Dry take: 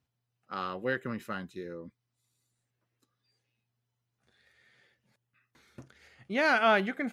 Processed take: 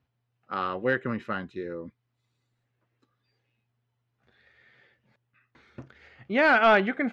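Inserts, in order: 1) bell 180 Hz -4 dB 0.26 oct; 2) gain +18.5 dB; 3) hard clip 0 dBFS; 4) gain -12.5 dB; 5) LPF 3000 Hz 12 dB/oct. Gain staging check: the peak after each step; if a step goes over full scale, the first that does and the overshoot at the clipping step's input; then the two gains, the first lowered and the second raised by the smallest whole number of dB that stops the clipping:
-14.0, +4.5, 0.0, -12.5, -12.0 dBFS; step 2, 4.5 dB; step 2 +13.5 dB, step 4 -7.5 dB

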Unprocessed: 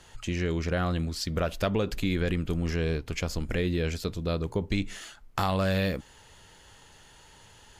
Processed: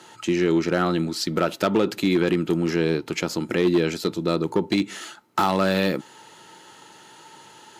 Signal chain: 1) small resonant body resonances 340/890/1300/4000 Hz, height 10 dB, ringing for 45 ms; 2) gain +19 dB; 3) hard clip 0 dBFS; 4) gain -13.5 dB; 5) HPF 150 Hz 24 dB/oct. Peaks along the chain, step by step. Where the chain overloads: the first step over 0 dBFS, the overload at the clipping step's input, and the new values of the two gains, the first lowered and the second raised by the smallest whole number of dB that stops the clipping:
-9.5, +9.5, 0.0, -13.5, -7.0 dBFS; step 2, 9.5 dB; step 2 +9 dB, step 4 -3.5 dB

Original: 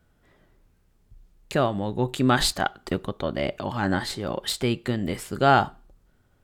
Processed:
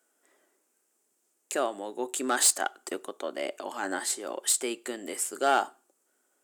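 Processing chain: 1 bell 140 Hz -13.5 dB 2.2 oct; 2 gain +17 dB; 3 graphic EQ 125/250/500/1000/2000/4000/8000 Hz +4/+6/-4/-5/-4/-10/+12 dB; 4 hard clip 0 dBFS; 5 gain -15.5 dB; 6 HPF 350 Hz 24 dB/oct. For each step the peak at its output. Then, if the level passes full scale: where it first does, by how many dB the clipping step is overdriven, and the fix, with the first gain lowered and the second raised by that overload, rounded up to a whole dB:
-7.5, +9.5, +9.0, 0.0, -15.5, -9.5 dBFS; step 2, 9.0 dB; step 2 +8 dB, step 5 -6.5 dB

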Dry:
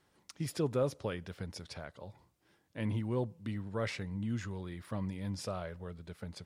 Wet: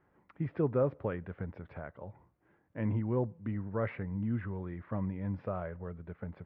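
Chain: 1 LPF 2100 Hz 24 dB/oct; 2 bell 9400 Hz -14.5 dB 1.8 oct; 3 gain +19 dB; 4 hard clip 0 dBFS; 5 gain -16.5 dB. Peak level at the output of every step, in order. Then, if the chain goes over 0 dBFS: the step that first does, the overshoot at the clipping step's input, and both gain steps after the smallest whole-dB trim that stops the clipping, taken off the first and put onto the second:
-20.0, -20.5, -1.5, -1.5, -18.0 dBFS; no overload

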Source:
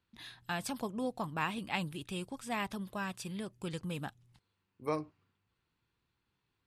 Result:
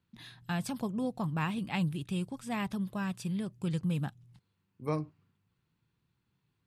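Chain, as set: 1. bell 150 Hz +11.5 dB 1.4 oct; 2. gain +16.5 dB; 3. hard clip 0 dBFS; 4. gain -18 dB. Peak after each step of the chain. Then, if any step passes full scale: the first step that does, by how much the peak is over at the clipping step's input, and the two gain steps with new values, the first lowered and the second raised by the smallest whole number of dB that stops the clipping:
-18.0, -1.5, -1.5, -19.5 dBFS; no overload

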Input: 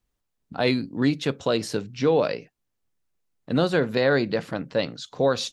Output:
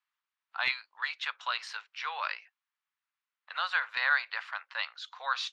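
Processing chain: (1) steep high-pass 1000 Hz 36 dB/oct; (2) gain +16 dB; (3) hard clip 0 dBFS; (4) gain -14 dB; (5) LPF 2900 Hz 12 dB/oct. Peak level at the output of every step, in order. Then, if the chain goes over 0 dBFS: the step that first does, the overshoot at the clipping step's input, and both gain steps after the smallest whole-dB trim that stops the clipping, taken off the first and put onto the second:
-11.0, +5.0, 0.0, -14.0, -14.5 dBFS; step 2, 5.0 dB; step 2 +11 dB, step 4 -9 dB

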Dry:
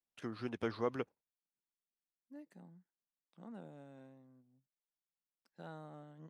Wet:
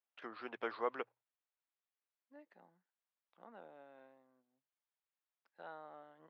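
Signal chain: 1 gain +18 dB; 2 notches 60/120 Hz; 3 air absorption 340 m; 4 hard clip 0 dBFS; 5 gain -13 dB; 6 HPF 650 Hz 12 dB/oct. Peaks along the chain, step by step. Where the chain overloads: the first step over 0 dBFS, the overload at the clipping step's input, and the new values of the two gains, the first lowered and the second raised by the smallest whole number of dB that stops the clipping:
-3.5, -4.0, -5.0, -5.0, -18.0, -23.5 dBFS; no overload

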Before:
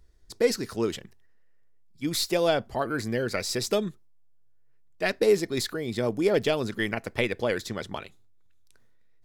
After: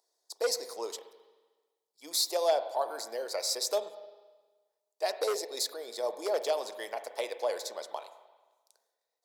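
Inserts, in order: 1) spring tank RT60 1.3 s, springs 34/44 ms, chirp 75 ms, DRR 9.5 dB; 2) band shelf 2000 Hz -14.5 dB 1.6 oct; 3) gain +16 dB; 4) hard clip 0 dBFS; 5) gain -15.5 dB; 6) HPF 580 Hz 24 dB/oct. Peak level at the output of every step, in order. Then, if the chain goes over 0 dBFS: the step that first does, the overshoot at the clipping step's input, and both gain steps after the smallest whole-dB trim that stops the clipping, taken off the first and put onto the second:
-9.5, -11.0, +5.0, 0.0, -15.5, -16.0 dBFS; step 3, 5.0 dB; step 3 +11 dB, step 5 -10.5 dB

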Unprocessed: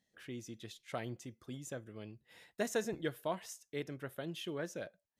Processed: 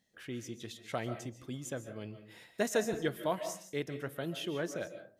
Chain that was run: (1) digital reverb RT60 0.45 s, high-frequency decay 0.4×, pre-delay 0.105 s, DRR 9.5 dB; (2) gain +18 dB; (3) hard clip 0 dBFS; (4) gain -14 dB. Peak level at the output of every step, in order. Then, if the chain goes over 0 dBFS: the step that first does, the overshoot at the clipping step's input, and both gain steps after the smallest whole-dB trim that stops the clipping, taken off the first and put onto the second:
-22.0, -4.0, -4.0, -18.0 dBFS; no overload

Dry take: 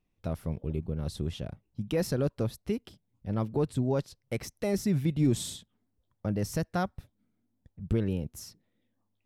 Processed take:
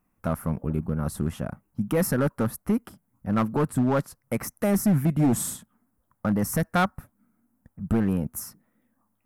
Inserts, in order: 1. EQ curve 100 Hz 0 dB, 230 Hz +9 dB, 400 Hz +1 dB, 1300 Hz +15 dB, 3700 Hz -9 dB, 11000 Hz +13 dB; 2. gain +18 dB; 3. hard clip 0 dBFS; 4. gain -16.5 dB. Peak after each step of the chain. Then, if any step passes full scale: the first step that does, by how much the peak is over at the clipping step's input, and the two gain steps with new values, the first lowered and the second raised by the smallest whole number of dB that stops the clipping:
-10.5, +7.5, 0.0, -16.5 dBFS; step 2, 7.5 dB; step 2 +10 dB, step 4 -8.5 dB

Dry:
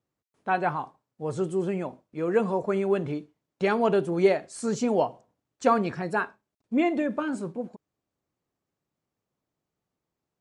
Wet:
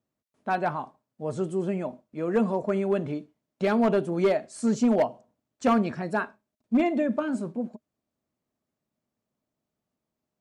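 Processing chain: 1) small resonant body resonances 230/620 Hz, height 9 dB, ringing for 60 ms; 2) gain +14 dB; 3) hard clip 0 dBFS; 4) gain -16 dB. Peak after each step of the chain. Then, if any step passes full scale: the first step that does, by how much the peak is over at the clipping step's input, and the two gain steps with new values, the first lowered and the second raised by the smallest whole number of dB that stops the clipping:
-7.5, +6.5, 0.0, -16.0 dBFS; step 2, 6.5 dB; step 2 +7 dB, step 4 -9 dB

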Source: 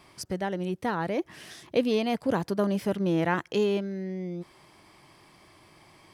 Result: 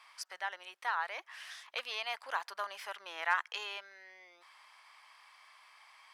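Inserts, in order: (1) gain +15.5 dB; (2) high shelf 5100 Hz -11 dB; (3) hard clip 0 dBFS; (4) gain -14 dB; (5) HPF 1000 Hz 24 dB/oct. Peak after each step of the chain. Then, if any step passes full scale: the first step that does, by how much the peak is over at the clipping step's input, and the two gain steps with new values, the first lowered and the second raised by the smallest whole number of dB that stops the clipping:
+3.0, +3.0, 0.0, -14.0, -17.0 dBFS; step 1, 3.0 dB; step 1 +12.5 dB, step 4 -11 dB

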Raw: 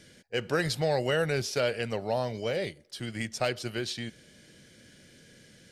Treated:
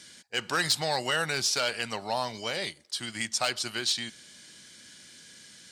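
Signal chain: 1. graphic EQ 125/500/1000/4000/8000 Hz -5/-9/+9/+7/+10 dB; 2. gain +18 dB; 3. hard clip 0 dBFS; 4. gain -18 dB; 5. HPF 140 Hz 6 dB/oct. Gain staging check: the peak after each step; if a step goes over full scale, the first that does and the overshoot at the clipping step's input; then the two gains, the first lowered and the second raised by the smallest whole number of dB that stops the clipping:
-9.5, +8.5, 0.0, -18.0, -16.5 dBFS; step 2, 8.5 dB; step 2 +9 dB, step 4 -9 dB

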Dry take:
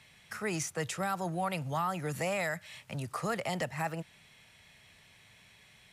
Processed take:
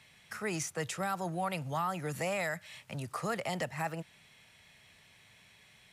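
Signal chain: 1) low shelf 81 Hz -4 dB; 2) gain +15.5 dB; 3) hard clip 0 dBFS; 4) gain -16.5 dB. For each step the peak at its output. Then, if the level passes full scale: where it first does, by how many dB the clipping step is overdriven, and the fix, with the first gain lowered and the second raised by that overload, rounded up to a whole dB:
-20.5, -5.0, -5.0, -21.5 dBFS; no overload

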